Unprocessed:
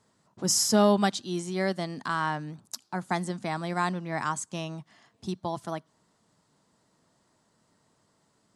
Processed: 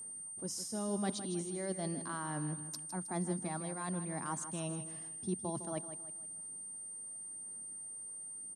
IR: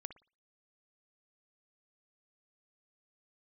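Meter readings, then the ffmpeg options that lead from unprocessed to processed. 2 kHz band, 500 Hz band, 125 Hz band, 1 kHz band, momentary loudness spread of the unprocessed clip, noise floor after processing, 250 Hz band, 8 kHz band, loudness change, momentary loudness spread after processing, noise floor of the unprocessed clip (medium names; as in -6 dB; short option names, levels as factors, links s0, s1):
-14.5 dB, -11.5 dB, -6.5 dB, -13.0 dB, 17 LU, -47 dBFS, -9.0 dB, -4.5 dB, -10.5 dB, 6 LU, -70 dBFS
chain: -filter_complex "[0:a]areverse,acompressor=threshold=0.0141:ratio=6,areverse,aphaser=in_gain=1:out_gain=1:delay=2:decay=0.26:speed=0.93:type=sinusoidal,equalizer=f=290:w=0.58:g=8,asplit=2[s0][s1];[s1]aecho=0:1:158|316|474|632:0.282|0.118|0.0497|0.0209[s2];[s0][s2]amix=inputs=2:normalize=0,aeval=exprs='val(0)+0.0112*sin(2*PI*8800*n/s)':c=same,volume=0.596"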